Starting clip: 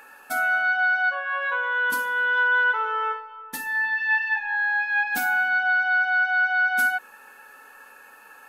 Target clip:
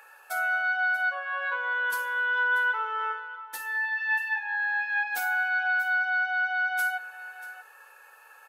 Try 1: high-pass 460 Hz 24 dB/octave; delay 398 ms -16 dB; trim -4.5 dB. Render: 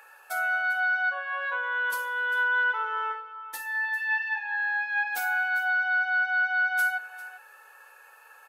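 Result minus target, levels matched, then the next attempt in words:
echo 239 ms early
high-pass 460 Hz 24 dB/octave; delay 637 ms -16 dB; trim -4.5 dB

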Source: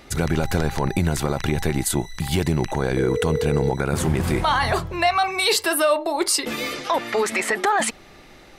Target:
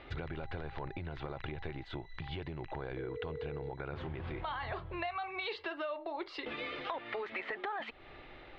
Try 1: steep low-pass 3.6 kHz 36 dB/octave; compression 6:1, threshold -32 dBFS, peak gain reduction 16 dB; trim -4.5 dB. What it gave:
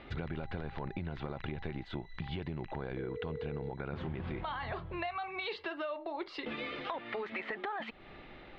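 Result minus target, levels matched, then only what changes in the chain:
250 Hz band +3.0 dB
add after compression: peaking EQ 200 Hz -11 dB 0.57 oct

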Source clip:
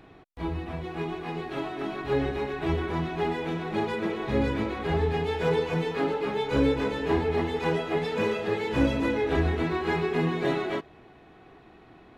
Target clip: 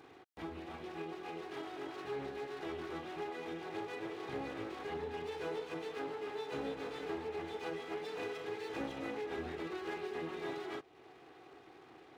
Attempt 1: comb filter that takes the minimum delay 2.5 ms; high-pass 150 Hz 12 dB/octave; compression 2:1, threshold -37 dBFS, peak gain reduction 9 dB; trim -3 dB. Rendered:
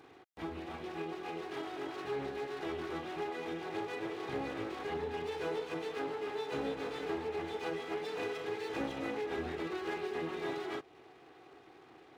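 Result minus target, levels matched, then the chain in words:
compression: peak gain reduction -3 dB
comb filter that takes the minimum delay 2.5 ms; high-pass 150 Hz 12 dB/octave; compression 2:1, threshold -43.5 dBFS, peak gain reduction 12.5 dB; trim -3 dB

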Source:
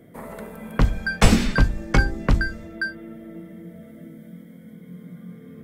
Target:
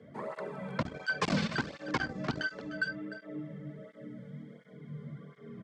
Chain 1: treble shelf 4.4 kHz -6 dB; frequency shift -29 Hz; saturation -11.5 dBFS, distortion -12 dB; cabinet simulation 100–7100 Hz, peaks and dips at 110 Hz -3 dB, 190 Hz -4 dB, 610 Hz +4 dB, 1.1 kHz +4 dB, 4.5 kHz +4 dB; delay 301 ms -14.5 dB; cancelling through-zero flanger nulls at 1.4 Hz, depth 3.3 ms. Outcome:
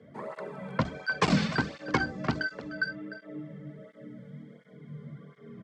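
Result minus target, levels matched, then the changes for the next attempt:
saturation: distortion -8 dB
change: saturation -22 dBFS, distortion -4 dB

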